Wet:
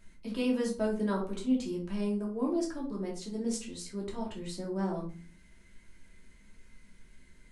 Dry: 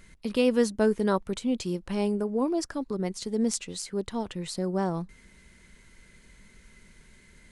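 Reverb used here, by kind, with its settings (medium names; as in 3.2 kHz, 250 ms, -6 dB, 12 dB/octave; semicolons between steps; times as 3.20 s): simulated room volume 270 m³, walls furnished, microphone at 2.8 m; trim -11.5 dB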